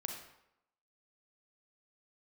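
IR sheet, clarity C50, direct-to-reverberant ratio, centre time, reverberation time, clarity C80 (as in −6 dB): 4.0 dB, 2.0 dB, 34 ms, 0.80 s, 7.0 dB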